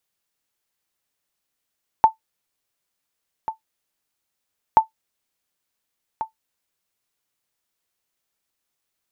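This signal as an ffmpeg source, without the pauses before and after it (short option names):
-f lavfi -i "aevalsrc='0.708*(sin(2*PI*885*mod(t,2.73))*exp(-6.91*mod(t,2.73)/0.12)+0.2*sin(2*PI*885*max(mod(t,2.73)-1.44,0))*exp(-6.91*max(mod(t,2.73)-1.44,0)/0.12))':d=5.46:s=44100"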